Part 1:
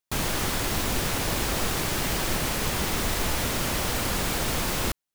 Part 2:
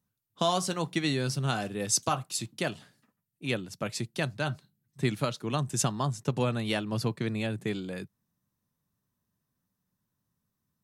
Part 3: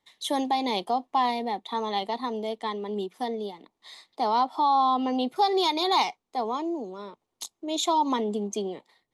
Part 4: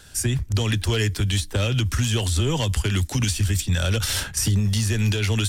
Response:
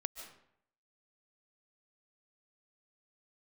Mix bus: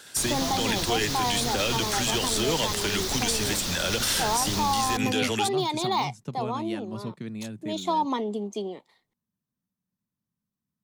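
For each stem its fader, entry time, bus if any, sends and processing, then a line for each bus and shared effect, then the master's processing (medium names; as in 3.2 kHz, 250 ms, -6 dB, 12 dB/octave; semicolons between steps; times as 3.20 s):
-6.5 dB, 0.05 s, no send, high-order bell 4.8 kHz +10 dB 1.1 oct
-9.5 dB, 0.00 s, no send, peaking EQ 210 Hz +8 dB 0.94 oct
-1.5 dB, 0.00 s, no send, de-esser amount 75%
+1.5 dB, 0.00 s, no send, high-pass 280 Hz 12 dB/octave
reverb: none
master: peak limiter -15 dBFS, peak gain reduction 6.5 dB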